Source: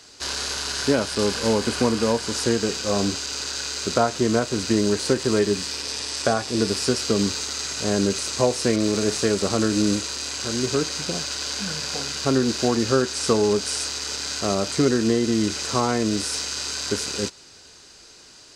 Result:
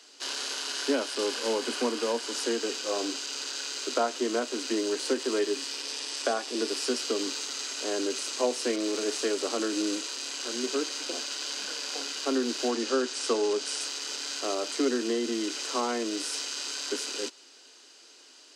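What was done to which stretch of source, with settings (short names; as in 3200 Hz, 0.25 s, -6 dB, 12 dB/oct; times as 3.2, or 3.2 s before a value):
12.71–13.81 LPF 10000 Hz
whole clip: steep high-pass 240 Hz 96 dB/oct; bell 3000 Hz +6.5 dB 0.3 oct; gain -6.5 dB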